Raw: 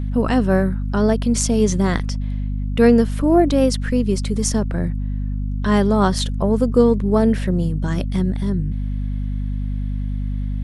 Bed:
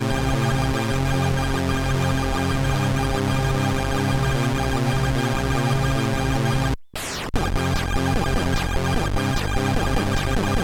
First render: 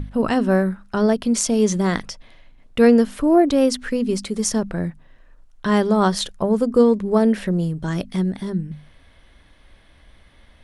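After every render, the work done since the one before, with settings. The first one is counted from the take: hum notches 50/100/150/200/250 Hz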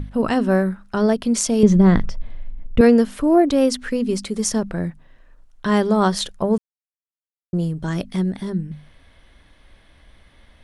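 1.63–2.81 s: RIAA curve playback; 6.58–7.53 s: mute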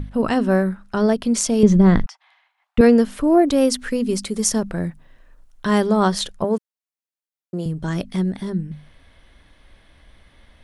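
2.06–2.78 s: Chebyshev high-pass 780 Hz, order 5; 3.42–5.86 s: treble shelf 8.7 kHz +8.5 dB; 6.44–7.66 s: high-pass 240 Hz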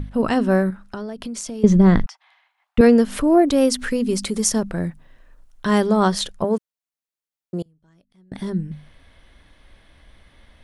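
0.70–1.64 s: compression 8:1, threshold -27 dBFS; 2.87–4.49 s: upward compressor, threshold -19 dBFS; 7.62–8.32 s: inverted gate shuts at -29 dBFS, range -33 dB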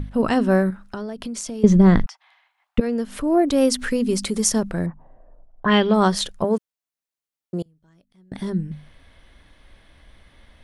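2.80–3.72 s: fade in linear, from -15 dB; 4.86–5.94 s: touch-sensitive low-pass 630–3000 Hz up, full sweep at -16 dBFS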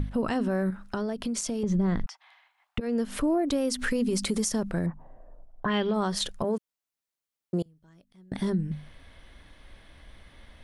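compression 8:1, threshold -21 dBFS, peak gain reduction 13 dB; peak limiter -18.5 dBFS, peak gain reduction 8 dB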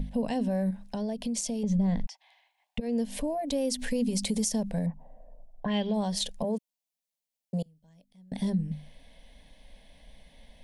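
static phaser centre 350 Hz, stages 6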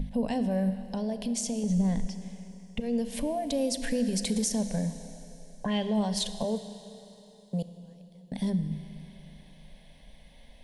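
Schroeder reverb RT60 3.3 s, combs from 26 ms, DRR 10.5 dB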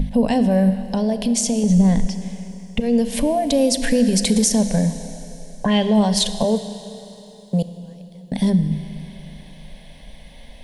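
trim +11.5 dB

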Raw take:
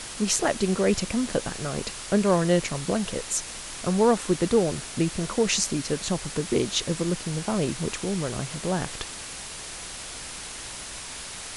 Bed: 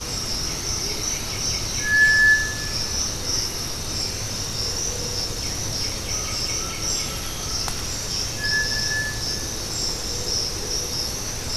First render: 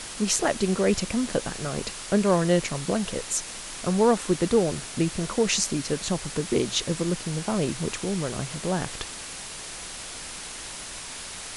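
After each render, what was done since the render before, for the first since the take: de-hum 60 Hz, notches 2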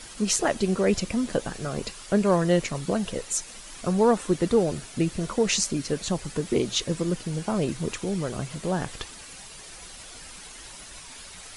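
noise reduction 9 dB, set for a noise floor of -38 dBFS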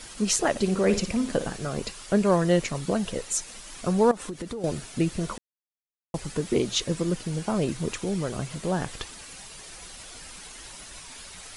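0.50–1.56 s: flutter echo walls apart 9.9 m, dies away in 0.33 s; 4.11–4.64 s: compression 12:1, threshold -30 dBFS; 5.38–6.14 s: mute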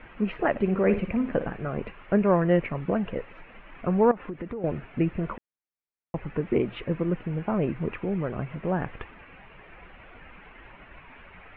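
steep low-pass 2.6 kHz 48 dB/octave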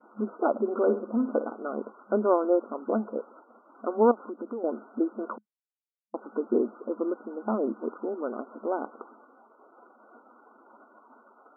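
FFT band-pass 210–1500 Hz; expander -49 dBFS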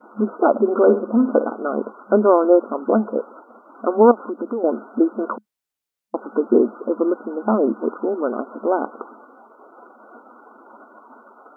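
trim +10 dB; peak limiter -3 dBFS, peak gain reduction 2.5 dB

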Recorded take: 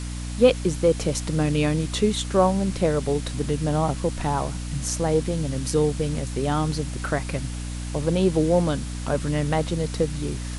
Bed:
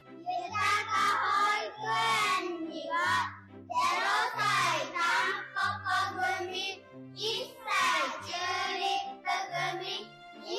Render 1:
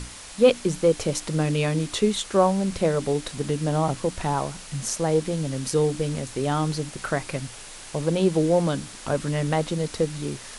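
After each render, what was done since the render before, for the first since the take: hum notches 60/120/180/240/300 Hz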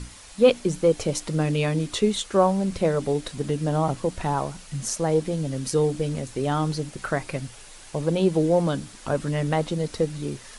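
noise reduction 6 dB, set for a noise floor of -41 dBFS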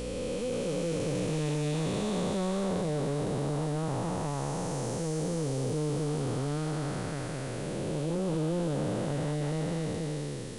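spectral blur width 977 ms; saturation -23.5 dBFS, distortion -16 dB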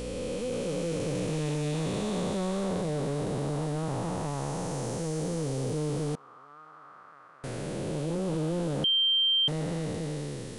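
6.15–7.44 s: band-pass filter 1.2 kHz, Q 7.2; 8.84–9.48 s: bleep 3.15 kHz -21.5 dBFS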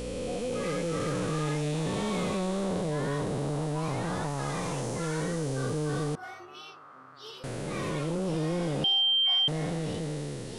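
add bed -12.5 dB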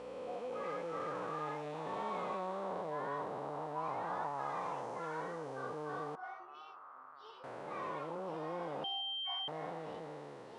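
band-pass filter 940 Hz, Q 1.9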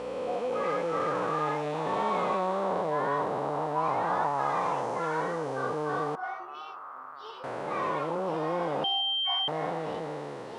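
trim +11 dB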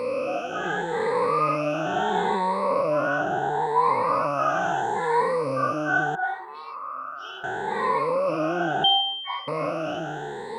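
drifting ripple filter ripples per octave 0.95, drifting +0.74 Hz, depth 23 dB; small resonant body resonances 1.5/2.6 kHz, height 9 dB, ringing for 25 ms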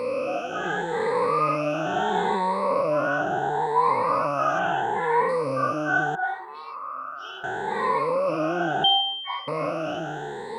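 4.59–5.29 s: resonant high shelf 3.6 kHz -6 dB, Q 3

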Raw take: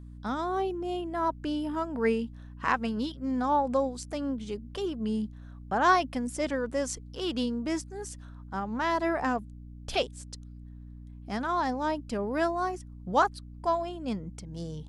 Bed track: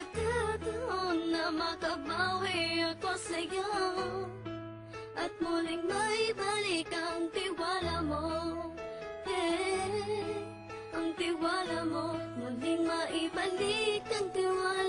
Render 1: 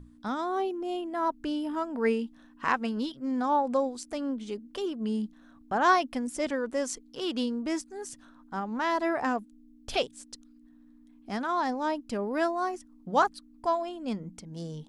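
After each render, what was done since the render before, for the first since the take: hum notches 60/120/180 Hz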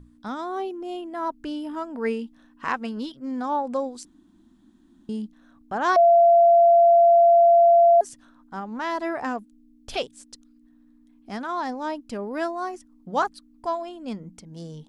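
4.05–5.09 s: room tone; 5.96–8.01 s: bleep 684 Hz -11.5 dBFS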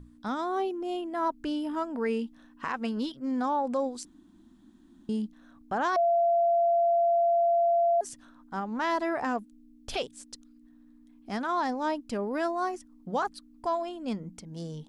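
peak limiter -20.5 dBFS, peak gain reduction 9 dB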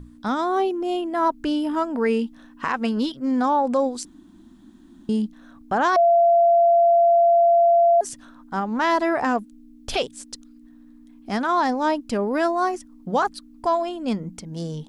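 trim +8 dB

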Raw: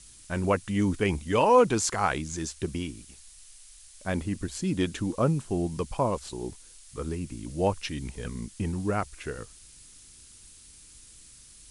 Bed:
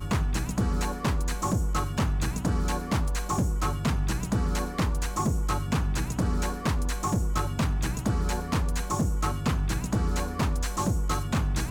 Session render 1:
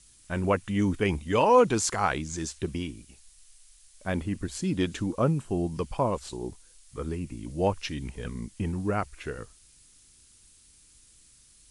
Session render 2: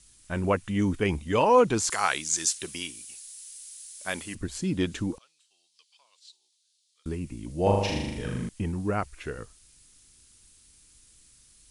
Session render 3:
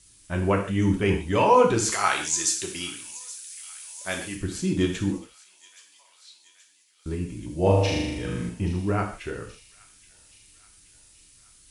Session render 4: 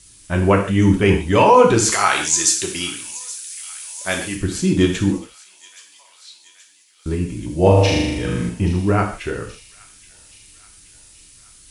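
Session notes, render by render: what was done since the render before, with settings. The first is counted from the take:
noise print and reduce 6 dB
1.90–4.35 s: tilt EQ +4.5 dB/octave; 5.18–7.06 s: ladder band-pass 4.5 kHz, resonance 50%; 7.62–8.49 s: flutter echo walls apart 6.8 m, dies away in 1 s
feedback echo behind a high-pass 826 ms, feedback 58%, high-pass 2.4 kHz, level -17 dB; gated-style reverb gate 180 ms falling, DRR 1 dB
trim +8 dB; peak limiter -2 dBFS, peak gain reduction 3 dB

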